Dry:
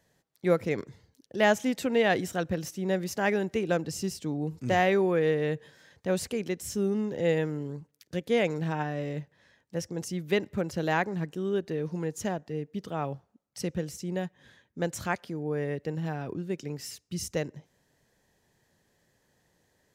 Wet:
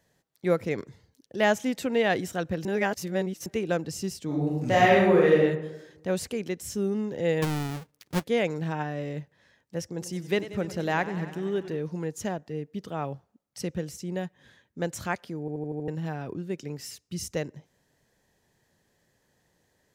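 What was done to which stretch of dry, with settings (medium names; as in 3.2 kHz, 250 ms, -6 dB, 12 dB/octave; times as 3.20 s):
2.65–3.46 s: reverse
4.25–5.37 s: reverb throw, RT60 0.99 s, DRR -4.5 dB
7.42–8.24 s: square wave that keeps the level
9.88–11.77 s: modulated delay 95 ms, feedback 74%, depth 98 cents, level -14.5 dB
15.40 s: stutter in place 0.08 s, 6 plays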